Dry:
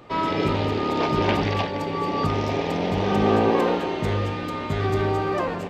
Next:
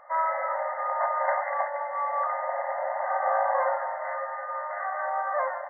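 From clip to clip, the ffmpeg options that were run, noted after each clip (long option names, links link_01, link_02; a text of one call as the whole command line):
ffmpeg -i in.wav -af "afftfilt=real='re*between(b*sr/4096,520,2100)':imag='im*between(b*sr/4096,520,2100)':win_size=4096:overlap=0.75" out.wav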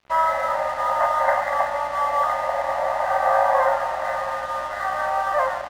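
ffmpeg -i in.wav -af "aecho=1:1:684:0.266,aeval=exprs='val(0)+0.00158*(sin(2*PI*60*n/s)+sin(2*PI*2*60*n/s)/2+sin(2*PI*3*60*n/s)/3+sin(2*PI*4*60*n/s)/4+sin(2*PI*5*60*n/s)/5)':channel_layout=same,aeval=exprs='sgn(val(0))*max(abs(val(0))-0.00562,0)':channel_layout=same,volume=7dB" out.wav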